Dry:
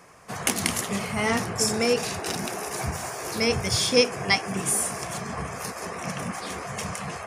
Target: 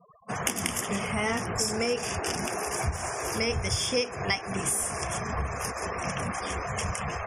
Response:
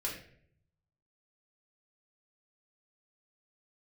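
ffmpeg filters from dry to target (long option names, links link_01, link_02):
-af "afftfilt=real='re*gte(hypot(re,im),0.01)':imag='im*gte(hypot(re,im),0.01)':win_size=1024:overlap=0.75,asubboost=boost=8:cutoff=60,acompressor=threshold=-29dB:ratio=3,asuperstop=centerf=4100:order=12:qfactor=3.5,volume=2.5dB" -ar 44100 -c:a aac -b:a 192k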